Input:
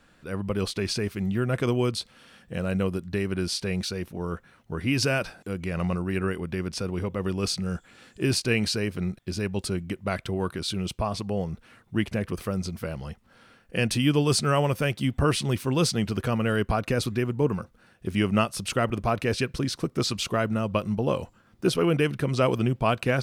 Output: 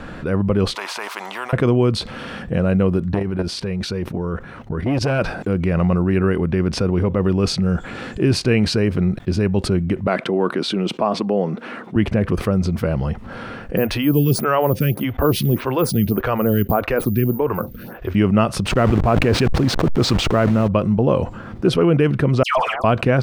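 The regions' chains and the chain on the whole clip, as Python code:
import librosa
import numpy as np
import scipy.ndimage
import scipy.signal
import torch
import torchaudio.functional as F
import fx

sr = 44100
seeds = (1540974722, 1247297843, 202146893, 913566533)

y = fx.chain(x, sr, fx.ladder_highpass(hz=890.0, resonance_pct=75),
    fx.spectral_comp(ratio=2.0), at=(0.75, 1.53))
y = fx.chain(y, sr, fx.level_steps(step_db=13),
    fx.transformer_sat(knee_hz=720.0), at=(3.14, 5.19))
y = fx.chain(y, sr, fx.highpass(hz=210.0, slope=24),
    fx.high_shelf(hz=7200.0, db=-7.5), at=(10.07, 11.96))
y = fx.chain(y, sr, fx.resample_bad(factor=3, down='filtered', up='zero_stuff'),
    fx.stagger_phaser(hz=1.7), at=(13.77, 18.15))
y = fx.chain(y, sr, fx.delta_hold(step_db=-33.5),
    fx.sustainer(db_per_s=21.0), at=(18.66, 20.68))
y = fx.chain(y, sr, fx.steep_highpass(hz=680.0, slope=48),
    fx.leveller(passes=2),
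    fx.dispersion(late='lows', ms=141.0, hz=1500.0), at=(22.43, 22.84))
y = fx.lowpass(y, sr, hz=1100.0, slope=6)
y = fx.env_flatten(y, sr, amount_pct=50)
y = y * 10.0 ** (6.5 / 20.0)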